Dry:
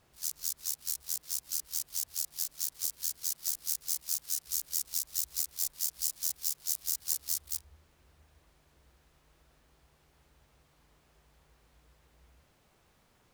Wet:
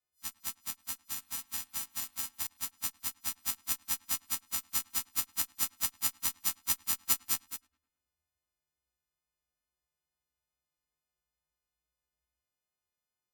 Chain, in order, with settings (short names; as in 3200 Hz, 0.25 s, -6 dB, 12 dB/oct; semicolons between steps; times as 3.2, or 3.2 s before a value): frequency quantiser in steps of 3 st; vibrato 2.3 Hz 6 cents; added harmonics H 3 -9 dB, 5 -43 dB, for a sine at -5 dBFS; 1.05–2.47 doubler 41 ms -4 dB; darkening echo 0.105 s, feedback 44%, low-pass 3200 Hz, level -24 dB